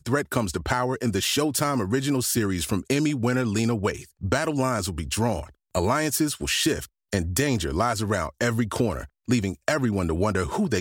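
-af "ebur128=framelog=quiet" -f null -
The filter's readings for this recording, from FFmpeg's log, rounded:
Integrated loudness:
  I:         -25.1 LUFS
  Threshold: -35.1 LUFS
Loudness range:
  LRA:         1.4 LU
  Threshold: -45.1 LUFS
  LRA low:   -25.6 LUFS
  LRA high:  -24.2 LUFS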